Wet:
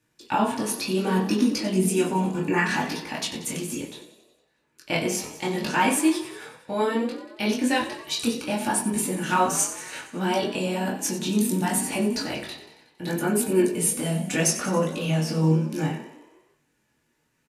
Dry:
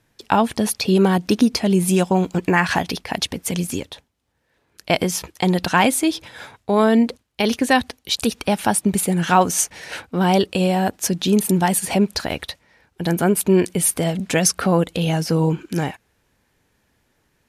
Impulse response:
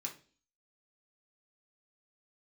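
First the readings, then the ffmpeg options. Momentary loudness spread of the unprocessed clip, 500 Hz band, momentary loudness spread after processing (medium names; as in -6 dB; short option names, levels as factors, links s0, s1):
9 LU, -6.0 dB, 9 LU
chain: -filter_complex "[0:a]flanger=delay=19:depth=6.8:speed=0.67,asplit=8[s0][s1][s2][s3][s4][s5][s6][s7];[s1]adelay=92,afreqshift=35,volume=0.224[s8];[s2]adelay=184,afreqshift=70,volume=0.135[s9];[s3]adelay=276,afreqshift=105,volume=0.0804[s10];[s4]adelay=368,afreqshift=140,volume=0.0484[s11];[s5]adelay=460,afreqshift=175,volume=0.0292[s12];[s6]adelay=552,afreqshift=210,volume=0.0174[s13];[s7]adelay=644,afreqshift=245,volume=0.0105[s14];[s0][s8][s9][s10][s11][s12][s13][s14]amix=inputs=8:normalize=0[s15];[1:a]atrim=start_sample=2205,asetrate=48510,aresample=44100[s16];[s15][s16]afir=irnorm=-1:irlink=0"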